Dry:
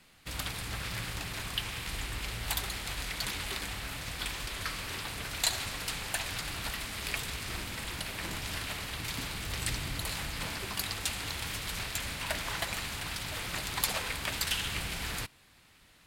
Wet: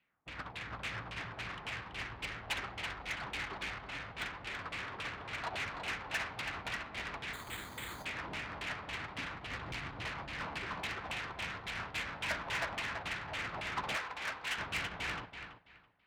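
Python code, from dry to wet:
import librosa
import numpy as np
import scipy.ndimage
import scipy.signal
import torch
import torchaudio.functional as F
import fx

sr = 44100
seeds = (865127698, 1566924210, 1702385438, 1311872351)

y = scipy.signal.medfilt(x, 5)
y = fx.dynamic_eq(y, sr, hz=4500.0, q=1.2, threshold_db=-50.0, ratio=4.0, max_db=5)
y = fx.filter_lfo_lowpass(y, sr, shape='saw_down', hz=3.6, low_hz=720.0, high_hz=2900.0, q=2.3)
y = fx.echo_feedback(y, sr, ms=331, feedback_pct=47, wet_db=-6)
y = 10.0 ** (-33.0 / 20.0) * np.tanh(y / 10.0 ** (-33.0 / 20.0))
y = fx.highpass(y, sr, hz=110.0, slope=6)
y = fx.resample_bad(y, sr, factor=8, down='filtered', up='hold', at=(7.33, 8.05))
y = fx.low_shelf(y, sr, hz=380.0, db=-10.0, at=(13.96, 14.58))
y = fx.upward_expand(y, sr, threshold_db=-51.0, expansion=2.5)
y = y * 10.0 ** (3.5 / 20.0)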